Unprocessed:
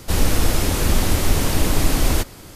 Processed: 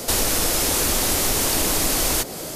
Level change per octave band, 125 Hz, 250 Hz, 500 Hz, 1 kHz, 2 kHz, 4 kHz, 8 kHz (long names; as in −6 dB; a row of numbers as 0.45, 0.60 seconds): −10.0, −4.5, 0.0, 0.0, +0.5, +3.5, +6.5 decibels